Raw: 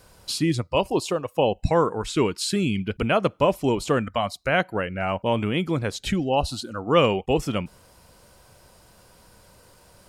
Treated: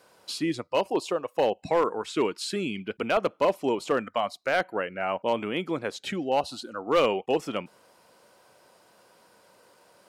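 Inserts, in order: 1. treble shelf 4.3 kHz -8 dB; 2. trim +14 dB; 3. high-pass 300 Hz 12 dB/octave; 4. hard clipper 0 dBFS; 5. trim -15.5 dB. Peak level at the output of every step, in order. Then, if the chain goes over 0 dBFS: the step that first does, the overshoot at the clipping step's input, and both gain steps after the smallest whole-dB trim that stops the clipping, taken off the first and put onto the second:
-6.5 dBFS, +7.5 dBFS, +8.0 dBFS, 0.0 dBFS, -15.5 dBFS; step 2, 8.0 dB; step 2 +6 dB, step 5 -7.5 dB

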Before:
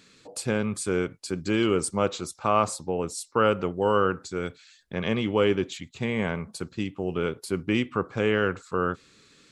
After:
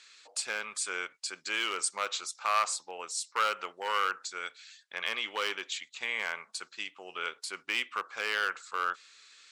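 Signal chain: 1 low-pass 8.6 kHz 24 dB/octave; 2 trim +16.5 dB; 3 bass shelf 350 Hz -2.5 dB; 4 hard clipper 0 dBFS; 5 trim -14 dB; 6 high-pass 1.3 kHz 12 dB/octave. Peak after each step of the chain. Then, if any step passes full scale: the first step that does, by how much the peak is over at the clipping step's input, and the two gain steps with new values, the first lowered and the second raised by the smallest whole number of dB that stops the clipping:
-8.0 dBFS, +8.5 dBFS, +8.0 dBFS, 0.0 dBFS, -14.0 dBFS, -15.0 dBFS; step 2, 8.0 dB; step 2 +8.5 dB, step 5 -6 dB

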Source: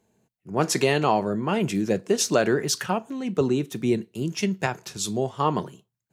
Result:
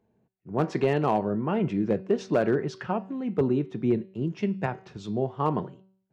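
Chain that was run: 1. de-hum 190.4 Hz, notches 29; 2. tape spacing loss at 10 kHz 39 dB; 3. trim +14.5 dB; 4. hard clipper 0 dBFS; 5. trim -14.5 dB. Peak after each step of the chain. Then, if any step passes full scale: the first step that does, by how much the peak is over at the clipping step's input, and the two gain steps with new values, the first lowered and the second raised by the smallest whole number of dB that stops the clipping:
-7.0 dBFS, -10.0 dBFS, +4.5 dBFS, 0.0 dBFS, -14.5 dBFS; step 3, 4.5 dB; step 3 +9.5 dB, step 5 -9.5 dB

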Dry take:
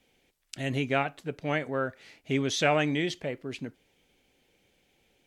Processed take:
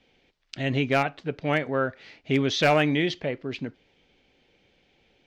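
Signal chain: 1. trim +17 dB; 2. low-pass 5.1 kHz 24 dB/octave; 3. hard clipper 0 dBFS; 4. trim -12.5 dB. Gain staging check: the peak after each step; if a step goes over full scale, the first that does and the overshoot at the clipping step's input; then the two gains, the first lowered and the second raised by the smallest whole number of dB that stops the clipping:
+6.5 dBFS, +6.5 dBFS, 0.0 dBFS, -12.5 dBFS; step 1, 6.5 dB; step 1 +10 dB, step 4 -5.5 dB

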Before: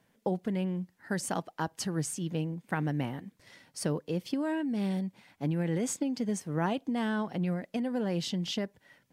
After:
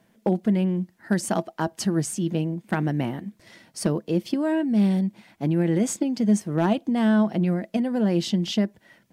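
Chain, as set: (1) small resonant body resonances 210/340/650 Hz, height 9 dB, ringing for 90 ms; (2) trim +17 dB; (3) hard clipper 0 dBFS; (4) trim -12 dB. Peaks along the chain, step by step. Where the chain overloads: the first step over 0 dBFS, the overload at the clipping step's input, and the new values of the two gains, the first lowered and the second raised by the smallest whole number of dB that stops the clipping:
-13.0 dBFS, +4.0 dBFS, 0.0 dBFS, -12.0 dBFS; step 2, 4.0 dB; step 2 +13 dB, step 4 -8 dB

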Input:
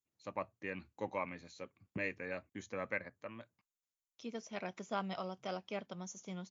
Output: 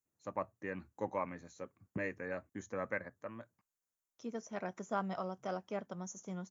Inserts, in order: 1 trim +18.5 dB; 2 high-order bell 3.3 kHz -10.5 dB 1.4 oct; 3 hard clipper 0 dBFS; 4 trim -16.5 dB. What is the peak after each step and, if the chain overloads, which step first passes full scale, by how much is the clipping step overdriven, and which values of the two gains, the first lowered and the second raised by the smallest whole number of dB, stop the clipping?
-4.0 dBFS, -5.5 dBFS, -5.5 dBFS, -22.0 dBFS; nothing clips

